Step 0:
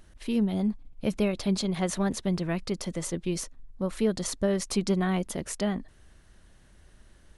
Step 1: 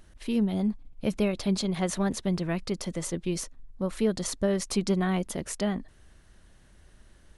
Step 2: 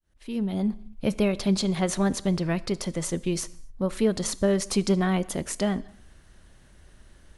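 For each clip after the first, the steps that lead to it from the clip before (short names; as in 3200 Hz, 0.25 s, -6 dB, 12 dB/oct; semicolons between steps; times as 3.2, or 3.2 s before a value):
nothing audible
opening faded in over 0.74 s; on a send at -17.5 dB: reverb, pre-delay 3 ms; on the sum: gain +3 dB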